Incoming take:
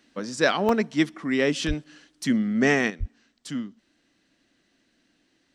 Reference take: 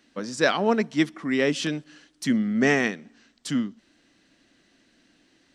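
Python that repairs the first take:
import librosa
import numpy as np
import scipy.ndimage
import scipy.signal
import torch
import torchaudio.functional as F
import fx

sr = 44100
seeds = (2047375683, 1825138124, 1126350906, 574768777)

y = fx.fix_deplosive(x, sr, at_s=(1.67, 2.99))
y = fx.fix_interpolate(y, sr, at_s=(0.69,), length_ms=2.1)
y = fx.gain(y, sr, db=fx.steps((0.0, 0.0), (2.9, 5.5)))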